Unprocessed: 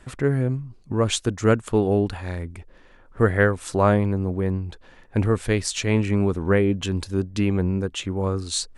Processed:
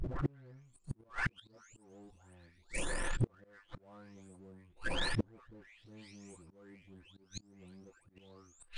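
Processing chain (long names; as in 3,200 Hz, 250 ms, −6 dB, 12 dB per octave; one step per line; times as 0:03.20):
every frequency bin delayed by itself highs late, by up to 650 ms
volume swells 338 ms
power curve on the samples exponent 0.7
gate with flip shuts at −27 dBFS, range −38 dB
level +6 dB
MP3 112 kbit/s 22,050 Hz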